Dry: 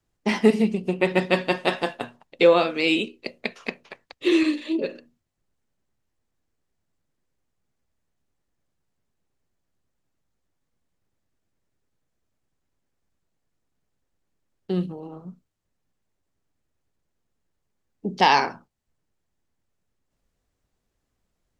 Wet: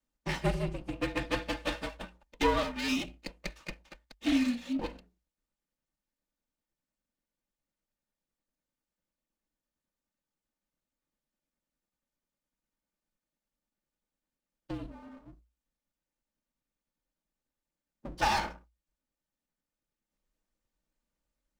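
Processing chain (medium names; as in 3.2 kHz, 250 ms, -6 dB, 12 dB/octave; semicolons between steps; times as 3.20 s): comb filter that takes the minimum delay 3.2 ms; frequency shift -58 Hz; trim -7.5 dB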